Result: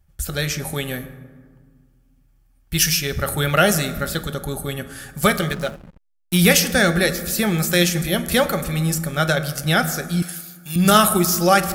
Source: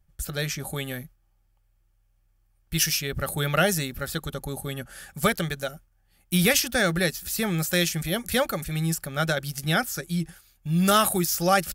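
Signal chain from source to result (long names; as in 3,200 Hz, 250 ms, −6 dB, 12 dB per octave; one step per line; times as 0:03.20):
convolution reverb RT60 1.7 s, pre-delay 7 ms, DRR 9 dB
0:05.52–0:06.38: slack as between gear wheels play −32.5 dBFS
0:10.22–0:10.76: spectral tilt +4.5 dB per octave
level +5.5 dB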